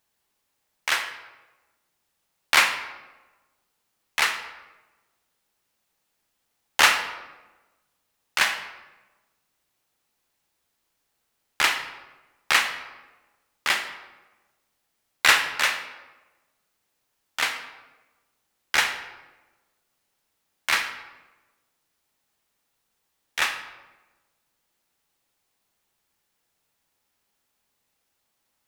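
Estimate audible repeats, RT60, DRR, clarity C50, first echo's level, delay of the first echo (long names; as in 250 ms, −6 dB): no echo audible, 1.2 s, 6.0 dB, 8.5 dB, no echo audible, no echo audible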